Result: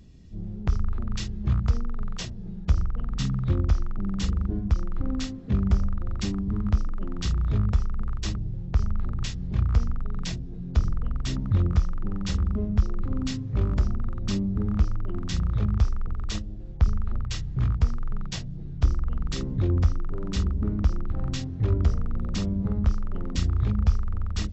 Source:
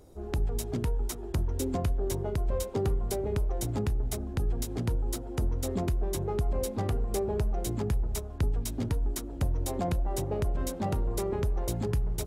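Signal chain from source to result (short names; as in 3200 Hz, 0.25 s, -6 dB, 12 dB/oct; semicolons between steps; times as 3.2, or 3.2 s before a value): rattling part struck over -30 dBFS, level -32 dBFS; speed mistake 15 ips tape played at 7.5 ips; bell 78 Hz +13.5 dB 1.3 oct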